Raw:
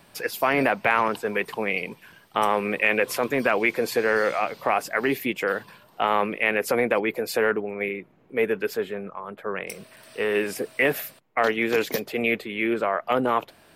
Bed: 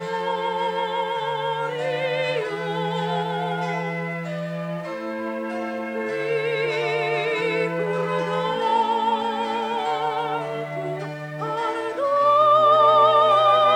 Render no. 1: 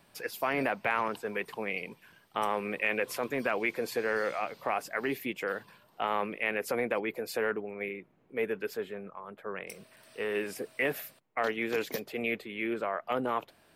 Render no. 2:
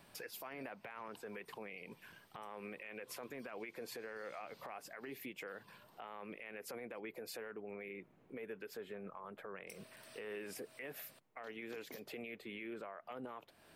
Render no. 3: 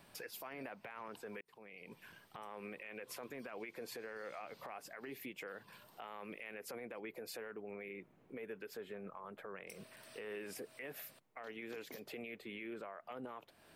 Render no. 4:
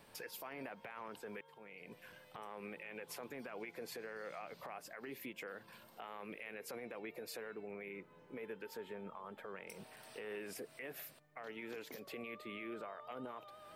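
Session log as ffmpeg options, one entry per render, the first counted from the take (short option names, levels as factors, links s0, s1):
-af "volume=0.376"
-af "acompressor=threshold=0.00708:ratio=2.5,alimiter=level_in=4.73:limit=0.0631:level=0:latency=1:release=100,volume=0.211"
-filter_complex "[0:a]asettb=1/sr,asplit=3[s0][s1][s2];[s0]atrim=end=5.724[s3];[s1]atrim=start=5.72:end=6.54,asetpts=PTS-STARTPTS,afade=t=in:d=0.004:c=qsin,afade=t=out:st=0.816:d=0.004:c=qsin,highshelf=f=3600:g=6.5[s4];[s2]atrim=start=6.536[s5];[s3][s4]acrossfade=d=0.004:c1=hsin:c2=qsin[s6];[s6][s5]acrossfade=d=0.004:c1=qsin:c2=hsin,asplit=2[s7][s8];[s7]atrim=end=1.41,asetpts=PTS-STARTPTS,afade=t=out:st=1.406:d=0.004:c=hsin[s9];[s8]atrim=start=1.41,asetpts=PTS-STARTPTS,afade=t=in:d=0.58[s10];[s9][s10]concat=n=2:v=0:a=1"
-filter_complex "[1:a]volume=0.00944[s0];[0:a][s0]amix=inputs=2:normalize=0"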